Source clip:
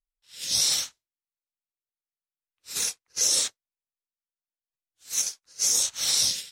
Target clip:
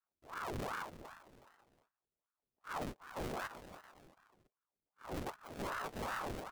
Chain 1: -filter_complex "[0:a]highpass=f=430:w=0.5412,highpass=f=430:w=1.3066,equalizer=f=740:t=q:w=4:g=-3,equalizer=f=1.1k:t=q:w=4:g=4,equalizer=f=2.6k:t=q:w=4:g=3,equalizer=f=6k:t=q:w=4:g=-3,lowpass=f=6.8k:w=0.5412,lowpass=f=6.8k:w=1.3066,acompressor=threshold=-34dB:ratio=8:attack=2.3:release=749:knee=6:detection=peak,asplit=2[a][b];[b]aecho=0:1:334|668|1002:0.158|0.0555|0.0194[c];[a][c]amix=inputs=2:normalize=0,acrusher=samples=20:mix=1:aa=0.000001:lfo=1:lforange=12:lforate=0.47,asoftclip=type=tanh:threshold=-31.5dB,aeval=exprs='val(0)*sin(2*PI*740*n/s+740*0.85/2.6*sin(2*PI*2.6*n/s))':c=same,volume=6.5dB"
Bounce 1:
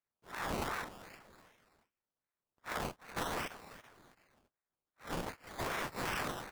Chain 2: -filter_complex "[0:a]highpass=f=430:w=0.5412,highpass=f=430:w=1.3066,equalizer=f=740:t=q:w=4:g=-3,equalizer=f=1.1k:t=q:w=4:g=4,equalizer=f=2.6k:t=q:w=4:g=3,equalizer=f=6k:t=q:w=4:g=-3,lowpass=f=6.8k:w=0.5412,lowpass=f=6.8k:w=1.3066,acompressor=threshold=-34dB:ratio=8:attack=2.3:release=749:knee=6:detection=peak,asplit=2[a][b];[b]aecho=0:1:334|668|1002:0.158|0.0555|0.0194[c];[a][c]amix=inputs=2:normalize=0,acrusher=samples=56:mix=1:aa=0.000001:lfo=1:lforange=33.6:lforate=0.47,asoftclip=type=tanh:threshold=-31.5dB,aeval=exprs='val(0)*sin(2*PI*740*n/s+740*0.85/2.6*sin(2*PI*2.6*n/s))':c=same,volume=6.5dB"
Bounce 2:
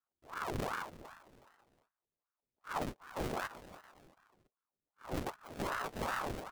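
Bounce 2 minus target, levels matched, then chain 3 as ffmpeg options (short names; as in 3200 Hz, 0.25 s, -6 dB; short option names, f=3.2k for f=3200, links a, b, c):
soft clip: distortion -10 dB
-filter_complex "[0:a]highpass=f=430:w=0.5412,highpass=f=430:w=1.3066,equalizer=f=740:t=q:w=4:g=-3,equalizer=f=1.1k:t=q:w=4:g=4,equalizer=f=2.6k:t=q:w=4:g=3,equalizer=f=6k:t=q:w=4:g=-3,lowpass=f=6.8k:w=0.5412,lowpass=f=6.8k:w=1.3066,acompressor=threshold=-34dB:ratio=8:attack=2.3:release=749:knee=6:detection=peak,asplit=2[a][b];[b]aecho=0:1:334|668|1002:0.158|0.0555|0.0194[c];[a][c]amix=inputs=2:normalize=0,acrusher=samples=56:mix=1:aa=0.000001:lfo=1:lforange=33.6:lforate=0.47,asoftclip=type=tanh:threshold=-40dB,aeval=exprs='val(0)*sin(2*PI*740*n/s+740*0.85/2.6*sin(2*PI*2.6*n/s))':c=same,volume=6.5dB"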